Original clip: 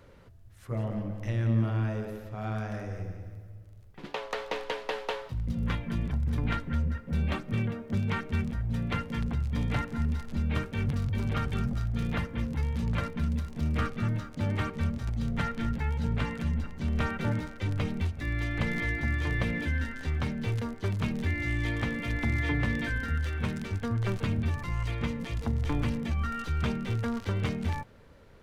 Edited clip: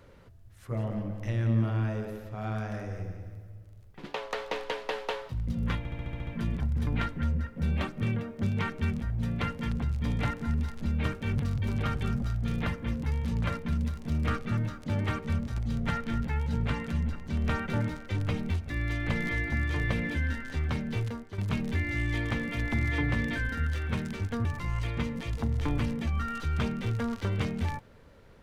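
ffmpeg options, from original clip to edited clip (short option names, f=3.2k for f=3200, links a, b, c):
-filter_complex "[0:a]asplit=10[a][b][c][d][e][f][g][h][i][j];[a]atrim=end=5.852[k];[b]atrim=start=5.778:end=5.852[l];[c]atrim=start=5.778:end=5.852[m];[d]atrim=start=5.778:end=5.852[n];[e]atrim=start=5.778:end=5.852[o];[f]atrim=start=5.778:end=5.852[p];[g]atrim=start=5.778:end=5.852[q];[h]atrim=start=5.778:end=20.89,asetpts=PTS-STARTPTS,afade=t=out:st=14.682:d=0.43:silence=0.281838[r];[i]atrim=start=20.89:end=23.962,asetpts=PTS-STARTPTS,afade=t=in:d=0.004:c=hsin:silence=0.281838[s];[j]atrim=start=24.488[t];[k][l]acrossfade=d=0.004:c1=hsin:c2=hsin[u];[u][m]acrossfade=d=0.004:c1=hsin:c2=hsin[v];[v][n]acrossfade=d=0.004:c1=hsin:c2=hsin[w];[w][o]acrossfade=d=0.004:c1=hsin:c2=hsin[x];[x][p]acrossfade=d=0.004:c1=hsin:c2=hsin[y];[y][q]acrossfade=d=0.004:c1=hsin:c2=hsin[z];[r][s]concat=n=2:v=0:a=1[aa];[z][aa]acrossfade=d=0.004:c1=hsin:c2=hsin[ab];[ab][t]acrossfade=d=0.004:c1=hsin:c2=hsin"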